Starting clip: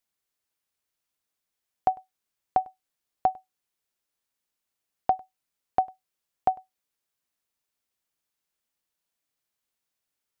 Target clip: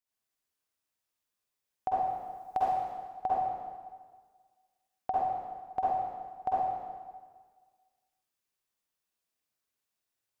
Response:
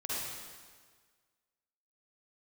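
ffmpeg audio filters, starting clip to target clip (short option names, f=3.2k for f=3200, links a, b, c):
-filter_complex "[0:a]asettb=1/sr,asplit=3[a][b][c];[a]atrim=end=1.944[d];[b]atrim=start=1.94:end=2.66,asetpts=PTS-STARTPTS,afade=t=in:d=0.004:c=qsin,afade=t=out:st=0.716:d=0.004:c=qsin,highshelf=f=2.3k:g=11.5[e];[c]atrim=start=2.656[f];[d][e]acrossfade=d=0.004:c1=hsin:c2=qsin[g];[g][f]acrossfade=d=0.004:c1=qsin:c2=hsin[h];[1:a]atrim=start_sample=2205[i];[h][i]afir=irnorm=-1:irlink=0,volume=-6dB"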